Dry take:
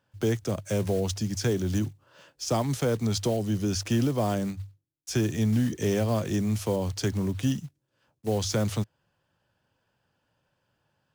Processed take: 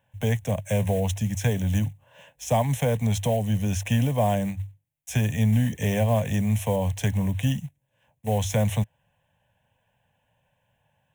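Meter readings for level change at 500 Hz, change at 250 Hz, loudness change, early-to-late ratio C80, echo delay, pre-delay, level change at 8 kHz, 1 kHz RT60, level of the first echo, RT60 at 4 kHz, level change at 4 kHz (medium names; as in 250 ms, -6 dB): +1.5 dB, +0.5 dB, +3.0 dB, no reverb, no echo, no reverb, 0.0 dB, no reverb, no echo, no reverb, -1.5 dB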